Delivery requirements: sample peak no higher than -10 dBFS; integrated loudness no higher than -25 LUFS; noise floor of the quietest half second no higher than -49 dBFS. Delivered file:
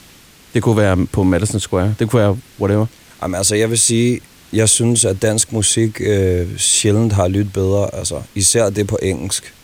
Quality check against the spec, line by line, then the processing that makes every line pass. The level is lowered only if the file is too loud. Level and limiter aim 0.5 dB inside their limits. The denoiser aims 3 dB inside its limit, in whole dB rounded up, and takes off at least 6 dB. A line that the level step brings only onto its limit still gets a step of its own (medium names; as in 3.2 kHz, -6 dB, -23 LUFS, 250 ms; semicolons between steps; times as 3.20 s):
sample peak -1.5 dBFS: fail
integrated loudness -15.5 LUFS: fail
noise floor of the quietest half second -44 dBFS: fail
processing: trim -10 dB